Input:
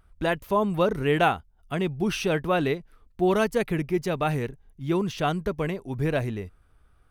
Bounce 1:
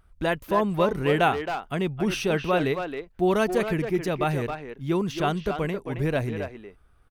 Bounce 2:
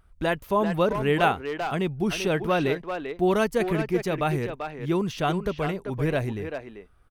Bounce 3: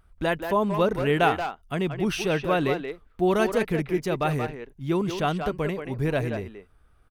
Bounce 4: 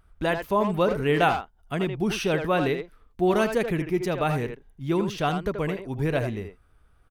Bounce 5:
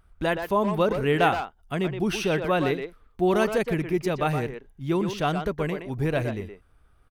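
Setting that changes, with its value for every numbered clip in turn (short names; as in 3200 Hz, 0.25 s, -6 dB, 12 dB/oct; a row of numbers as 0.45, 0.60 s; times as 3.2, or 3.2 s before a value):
speakerphone echo, time: 270, 390, 180, 80, 120 ms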